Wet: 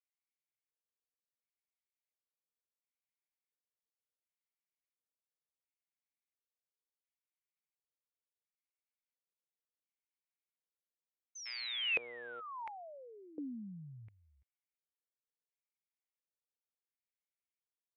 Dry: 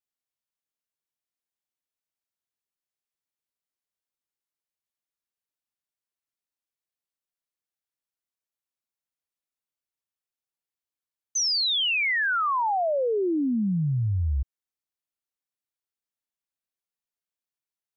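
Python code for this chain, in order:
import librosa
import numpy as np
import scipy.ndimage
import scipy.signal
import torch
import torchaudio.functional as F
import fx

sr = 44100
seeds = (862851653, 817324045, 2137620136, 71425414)

y = fx.dmg_buzz(x, sr, base_hz=120.0, harmonics=32, level_db=-39.0, tilt_db=-1, odd_only=False, at=(11.45, 12.39), fade=0.02)
y = fx.filter_lfo_bandpass(y, sr, shape='square', hz=0.71, low_hz=480.0, high_hz=2200.0, q=6.8)
y = y * 10.0 ** (1.0 / 20.0)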